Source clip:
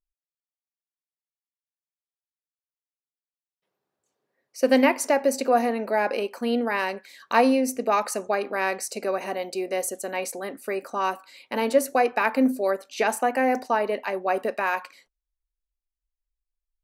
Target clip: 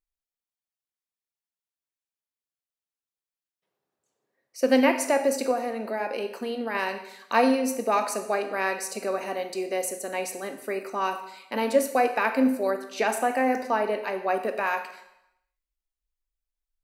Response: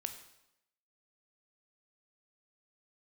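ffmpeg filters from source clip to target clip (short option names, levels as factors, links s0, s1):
-filter_complex "[0:a]asettb=1/sr,asplit=3[s0][s1][s2];[s0]atrim=end=5.514[s3];[s1]atrim=start=5.51:end=6.75,asetpts=PTS-STARTPTS,afade=t=in:d=0.004:c=qsin,afade=t=out:st=1.236:d=0.004:c=qsin,acompressor=threshold=0.0501:ratio=2.5[s4];[s2]atrim=start=6.746[s5];[s3][s4]acrossfade=d=0.004:c1=hsin:c2=qsin[s6];[s6][s5]acrossfade=d=0.004:c1=qsin:c2=hsin[s7];[1:a]atrim=start_sample=2205[s8];[s7][s8]afir=irnorm=-1:irlink=0"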